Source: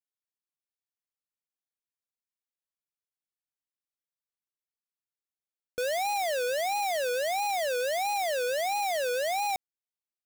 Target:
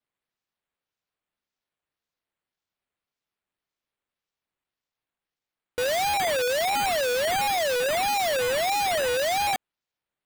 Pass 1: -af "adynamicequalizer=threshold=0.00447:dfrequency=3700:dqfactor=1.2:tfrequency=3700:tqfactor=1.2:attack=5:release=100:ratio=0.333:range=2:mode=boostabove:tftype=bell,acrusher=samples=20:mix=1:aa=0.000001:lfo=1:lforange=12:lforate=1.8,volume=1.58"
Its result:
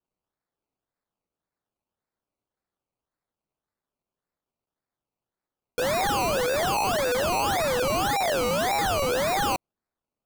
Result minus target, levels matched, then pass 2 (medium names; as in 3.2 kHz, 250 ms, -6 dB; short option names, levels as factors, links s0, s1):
decimation with a swept rate: distortion +10 dB
-af "adynamicequalizer=threshold=0.00447:dfrequency=3700:dqfactor=1.2:tfrequency=3700:tqfactor=1.2:attack=5:release=100:ratio=0.333:range=2:mode=boostabove:tftype=bell,acrusher=samples=6:mix=1:aa=0.000001:lfo=1:lforange=3.6:lforate=1.8,volume=1.58"